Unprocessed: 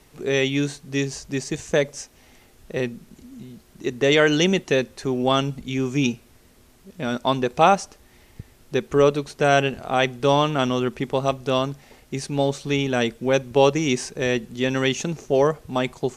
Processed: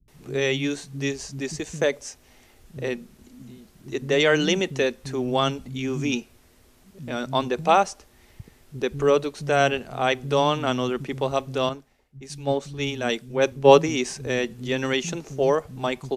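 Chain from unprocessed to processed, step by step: bands offset in time lows, highs 80 ms, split 200 Hz; 11.69–13.89 s: three bands expanded up and down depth 100%; trim -2 dB

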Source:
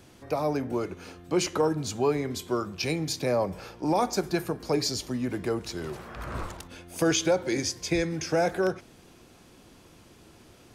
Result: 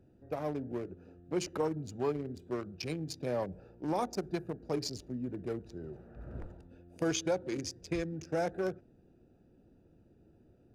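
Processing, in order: local Wiener filter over 41 samples; trim -7 dB

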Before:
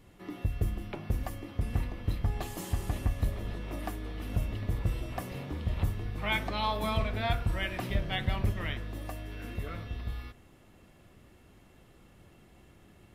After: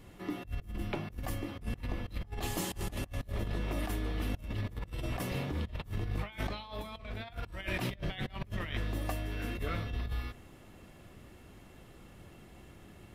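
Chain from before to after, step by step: dynamic bell 3.6 kHz, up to +3 dB, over -50 dBFS, Q 0.73; compressor with a negative ratio -36 dBFS, ratio -0.5

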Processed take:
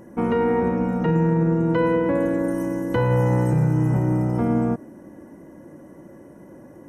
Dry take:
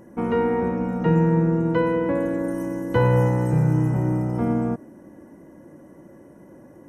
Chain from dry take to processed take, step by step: peak limiter -14.5 dBFS, peak gain reduction 6.5 dB; trim +2.5 dB

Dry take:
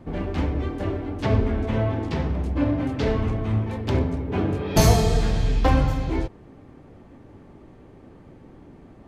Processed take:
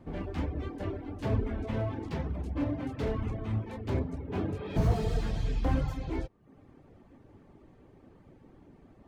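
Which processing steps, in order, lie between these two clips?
reverb removal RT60 0.57 s; slew-rate limiter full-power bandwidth 46 Hz; trim -7.5 dB

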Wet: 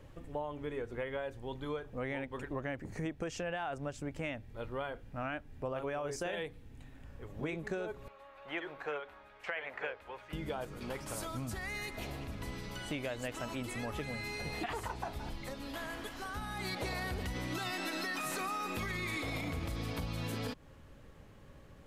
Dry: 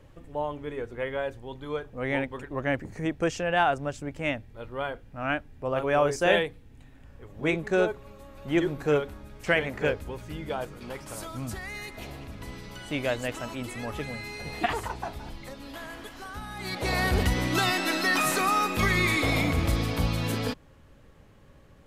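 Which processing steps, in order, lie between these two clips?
8.08–10.33 s: three-band isolator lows -23 dB, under 560 Hz, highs -19 dB, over 3.4 kHz; peak limiter -19 dBFS, peak gain reduction 9.5 dB; compression 6:1, threshold -34 dBFS, peak gain reduction 10.5 dB; trim -1 dB

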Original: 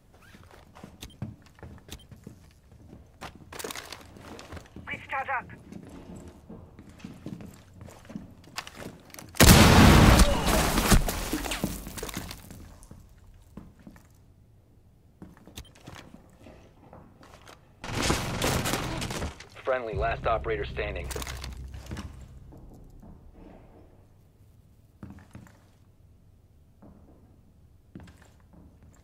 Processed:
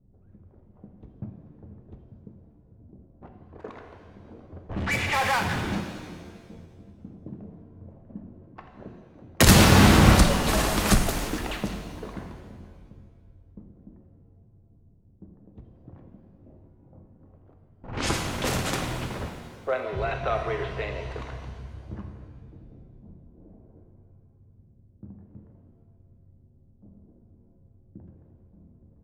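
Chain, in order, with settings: 4.69–5.81 s: power-law waveshaper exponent 0.35; level-controlled noise filter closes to 300 Hz, open at -23 dBFS; pitch-shifted reverb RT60 1.6 s, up +7 st, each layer -8 dB, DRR 4.5 dB; trim -1 dB

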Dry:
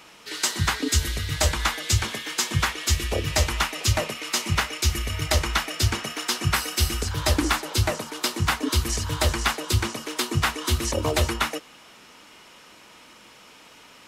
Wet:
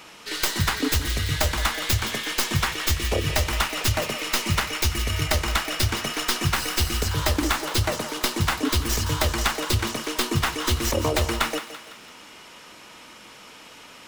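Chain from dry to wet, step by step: tracing distortion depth 0.15 ms; compression, threshold -22 dBFS, peak gain reduction 7 dB; on a send: thinning echo 168 ms, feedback 49%, level -11 dB; on the sum: trim +3.5 dB

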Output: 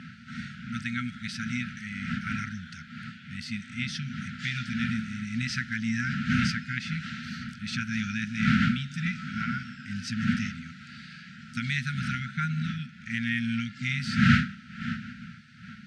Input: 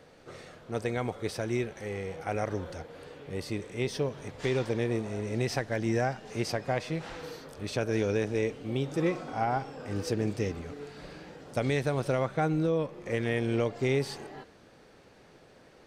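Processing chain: wind noise 560 Hz -30 dBFS; FFT band-reject 250–1300 Hz; band-pass 180–5100 Hz; trim +6 dB

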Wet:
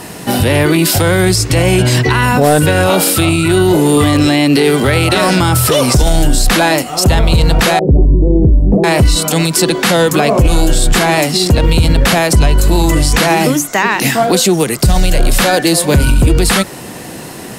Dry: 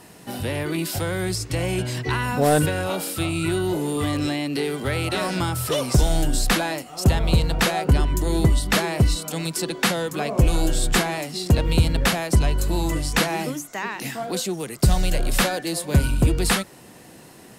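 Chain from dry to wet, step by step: 7.79–8.84 s: inverse Chebyshev low-pass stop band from 1.4 kHz, stop band 50 dB; loudness maximiser +19 dB; trim -1 dB

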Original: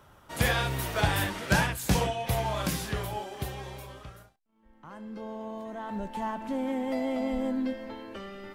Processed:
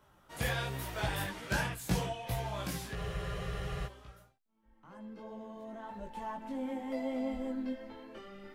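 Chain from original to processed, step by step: chorus voices 4, 0.72 Hz, delay 19 ms, depth 4.1 ms; spectral freeze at 2.97 s, 0.89 s; trim -5 dB

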